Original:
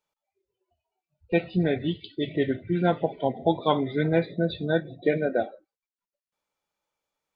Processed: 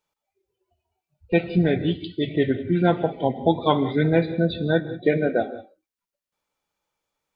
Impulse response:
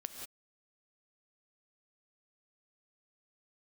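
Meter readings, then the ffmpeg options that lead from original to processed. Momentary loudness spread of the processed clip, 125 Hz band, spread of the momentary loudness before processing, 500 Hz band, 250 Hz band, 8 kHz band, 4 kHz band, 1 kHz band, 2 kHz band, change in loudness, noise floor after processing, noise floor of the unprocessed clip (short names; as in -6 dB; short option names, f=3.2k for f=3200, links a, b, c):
6 LU, +5.0 dB, 5 LU, +3.0 dB, +4.5 dB, n/a, +3.5 dB, +3.0 dB, +3.5 dB, +4.0 dB, under -85 dBFS, under -85 dBFS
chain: -filter_complex "[0:a]asplit=2[a][b];[b]equalizer=f=620:t=o:w=0.27:g=-7.5[c];[1:a]atrim=start_sample=2205,lowshelf=f=250:g=7.5[d];[c][d]afir=irnorm=-1:irlink=0,volume=-3.5dB[e];[a][e]amix=inputs=2:normalize=0"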